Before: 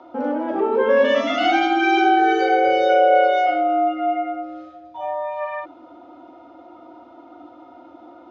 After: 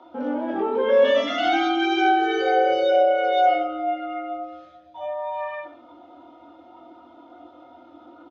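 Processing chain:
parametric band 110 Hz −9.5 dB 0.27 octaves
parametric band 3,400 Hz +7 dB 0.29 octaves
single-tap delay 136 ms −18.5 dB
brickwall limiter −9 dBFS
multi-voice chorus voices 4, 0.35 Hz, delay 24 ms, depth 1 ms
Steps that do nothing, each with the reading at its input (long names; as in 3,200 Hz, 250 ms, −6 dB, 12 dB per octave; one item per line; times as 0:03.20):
all steps act on this source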